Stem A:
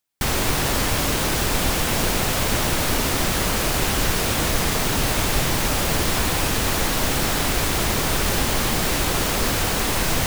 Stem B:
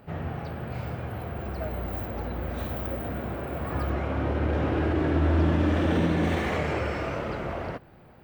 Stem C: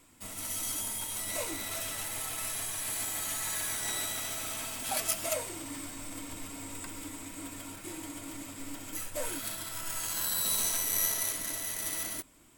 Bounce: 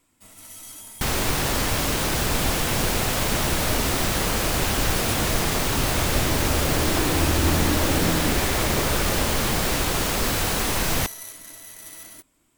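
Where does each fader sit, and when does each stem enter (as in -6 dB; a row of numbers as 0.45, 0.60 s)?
-2.0, -1.0, -6.0 dB; 0.80, 2.05, 0.00 s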